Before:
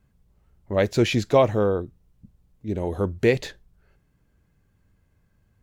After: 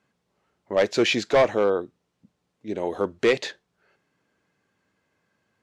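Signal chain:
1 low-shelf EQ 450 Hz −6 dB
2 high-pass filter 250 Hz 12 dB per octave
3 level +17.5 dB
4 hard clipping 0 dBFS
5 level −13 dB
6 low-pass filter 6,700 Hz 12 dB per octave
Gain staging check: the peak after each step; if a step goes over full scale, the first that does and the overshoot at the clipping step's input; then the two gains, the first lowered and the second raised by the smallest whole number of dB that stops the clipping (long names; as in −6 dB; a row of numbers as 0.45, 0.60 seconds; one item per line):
−8.0, −8.5, +9.0, 0.0, −13.0, −12.5 dBFS
step 3, 9.0 dB
step 3 +8.5 dB, step 5 −4 dB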